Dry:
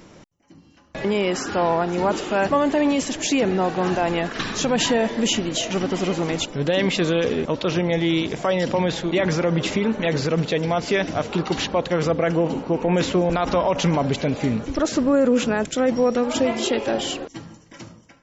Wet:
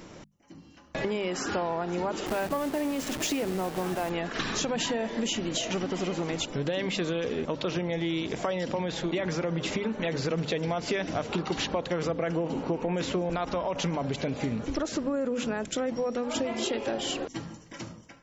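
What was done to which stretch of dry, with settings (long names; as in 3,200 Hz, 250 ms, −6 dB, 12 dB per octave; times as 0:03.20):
0:02.26–0:04.10: hold until the input has moved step −26 dBFS
0:10.27–0:13.45: clip gain +4 dB
whole clip: mains-hum notches 50/100/150/200/250 Hz; downward compressor, threshold −27 dBFS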